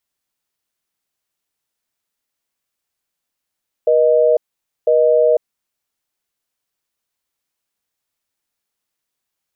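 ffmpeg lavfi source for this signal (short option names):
-f lavfi -i "aevalsrc='0.237*(sin(2*PI*480*t)+sin(2*PI*620*t))*clip(min(mod(t,1),0.5-mod(t,1))/0.005,0,1)':d=1.68:s=44100"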